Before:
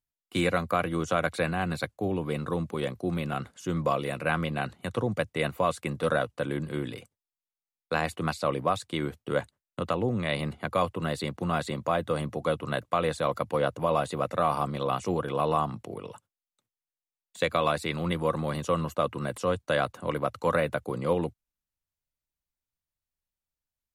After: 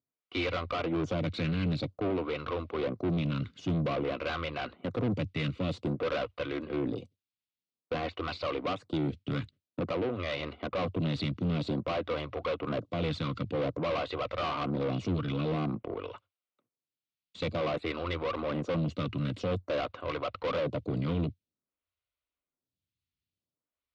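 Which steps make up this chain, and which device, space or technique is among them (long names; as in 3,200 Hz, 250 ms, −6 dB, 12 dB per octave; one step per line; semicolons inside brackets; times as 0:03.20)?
vibe pedal into a guitar amplifier (phaser with staggered stages 0.51 Hz; tube saturation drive 36 dB, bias 0.55; loudspeaker in its box 78–4,200 Hz, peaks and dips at 92 Hz +5 dB, 280 Hz +4 dB, 850 Hz −9 dB, 1,700 Hz −9 dB)
level +9 dB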